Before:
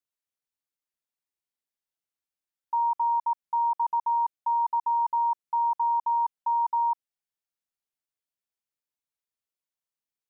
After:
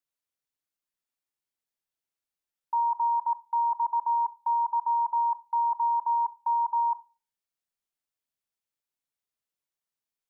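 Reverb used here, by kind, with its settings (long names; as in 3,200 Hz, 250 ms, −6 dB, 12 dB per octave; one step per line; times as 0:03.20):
rectangular room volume 230 cubic metres, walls furnished, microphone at 0.32 metres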